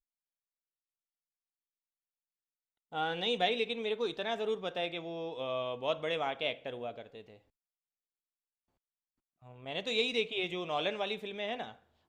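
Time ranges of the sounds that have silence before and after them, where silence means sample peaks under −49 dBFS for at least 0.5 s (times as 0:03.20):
0:02.92–0:07.36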